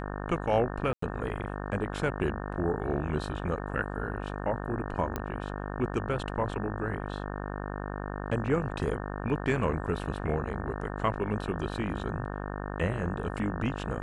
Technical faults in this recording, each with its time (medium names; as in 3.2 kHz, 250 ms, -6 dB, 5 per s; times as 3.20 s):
buzz 50 Hz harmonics 36 -36 dBFS
0.93–1.02 s: dropout 94 ms
5.16 s: pop -17 dBFS